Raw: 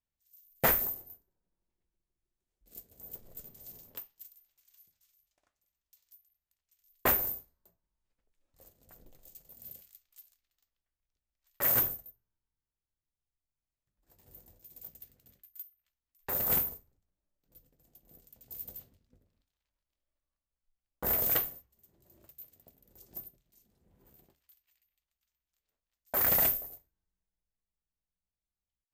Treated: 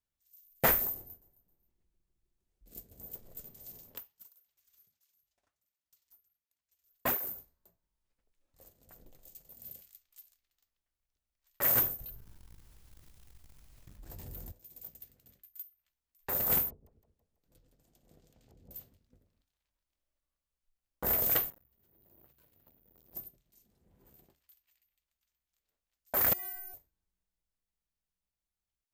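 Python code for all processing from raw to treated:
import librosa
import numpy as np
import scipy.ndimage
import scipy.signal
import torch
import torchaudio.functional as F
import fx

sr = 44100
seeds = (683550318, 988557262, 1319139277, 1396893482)

y = fx.chain(x, sr, fx.low_shelf(hz=350.0, db=7.5),
    fx.echo_feedback(ms=265, feedback_pct=30, wet_db=-19.5), at=(0.95, 3.06))
y = fx.chain(y, sr, fx.halfwave_gain(db=-3.0),
    fx.flanger_cancel(hz=1.4, depth_ms=6.8), at=(3.98, 7.38))
y = fx.chain(y, sr, fx.low_shelf(hz=170.0, db=11.0),
    fx.leveller(passes=2),
    fx.env_flatten(amount_pct=70), at=(12.0, 14.52))
y = fx.chain(y, sr, fx.env_lowpass_down(base_hz=410.0, full_db=-45.0),
    fx.echo_split(split_hz=490.0, low_ms=124, high_ms=164, feedback_pct=52, wet_db=-8.5), at=(16.7, 18.71))
y = fx.chain(y, sr, fx.lowpass(hz=3700.0, slope=12),
    fx.resample_bad(factor=3, down='none', up='zero_stuff'),
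    fx.transformer_sat(knee_hz=3100.0), at=(21.5, 23.14))
y = fx.chain(y, sr, fx.stiff_resonator(f0_hz=360.0, decay_s=0.62, stiffness=0.008),
    fx.env_flatten(amount_pct=70), at=(26.33, 26.74))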